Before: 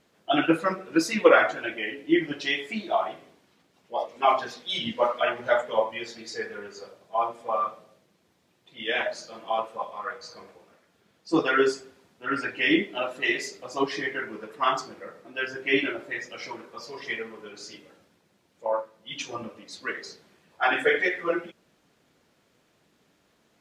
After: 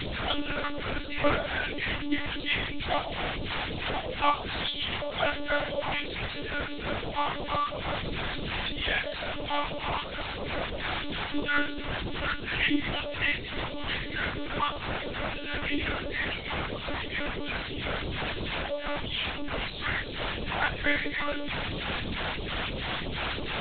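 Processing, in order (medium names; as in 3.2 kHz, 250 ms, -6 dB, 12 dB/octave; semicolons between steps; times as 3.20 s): one-bit delta coder 32 kbps, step -21 dBFS; in parallel at -12 dB: sine folder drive 9 dB, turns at -3 dBFS; on the sum: phase shifter stages 2, 3 Hz, lowest notch 110–1700 Hz; de-hum 100.3 Hz, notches 17; monotone LPC vocoder at 8 kHz 290 Hz; trim -8.5 dB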